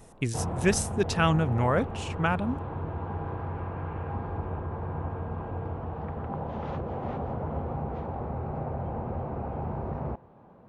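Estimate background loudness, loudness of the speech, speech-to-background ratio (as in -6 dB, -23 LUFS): -34.5 LUFS, -27.5 LUFS, 7.0 dB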